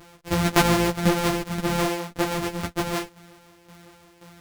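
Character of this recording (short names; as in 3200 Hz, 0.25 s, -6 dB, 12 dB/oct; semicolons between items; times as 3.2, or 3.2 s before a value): a buzz of ramps at a fixed pitch in blocks of 256 samples; tremolo saw down 1.9 Hz, depth 65%; a shimmering, thickened sound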